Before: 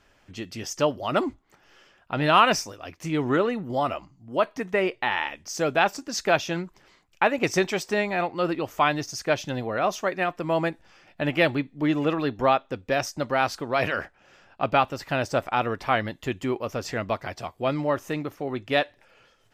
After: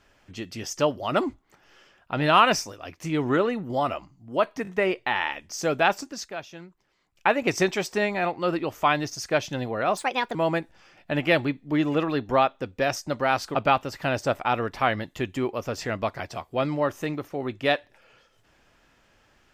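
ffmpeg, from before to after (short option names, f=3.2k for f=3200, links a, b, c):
-filter_complex "[0:a]asplit=8[a][b][c][d][e][f][g][h];[a]atrim=end=4.652[i];[b]atrim=start=4.628:end=4.652[j];[c]atrim=start=4.628:end=6.27,asetpts=PTS-STARTPTS,afade=t=out:st=1.352:d=0.29:silence=0.199526[k];[d]atrim=start=6.27:end=6.94,asetpts=PTS-STARTPTS,volume=-14dB[l];[e]atrim=start=6.94:end=9.934,asetpts=PTS-STARTPTS,afade=t=in:d=0.29:silence=0.199526[m];[f]atrim=start=9.93:end=10.45,asetpts=PTS-STARTPTS,asetrate=60417,aresample=44100[n];[g]atrim=start=10.446:end=13.652[o];[h]atrim=start=14.618[p];[i][j]acrossfade=d=0.004:c1=hsin:c2=hsin[q];[k][l][m]concat=n=3:v=0:a=1[r];[q][r]acrossfade=d=0.004:c1=hsin:c2=hsin[s];[s][n]acrossfade=d=0.004:c1=hsin:c2=hsin[t];[t][o]acrossfade=d=0.004:c1=hsin:c2=hsin[u];[u][p]acrossfade=d=0.004:c1=hsin:c2=hsin"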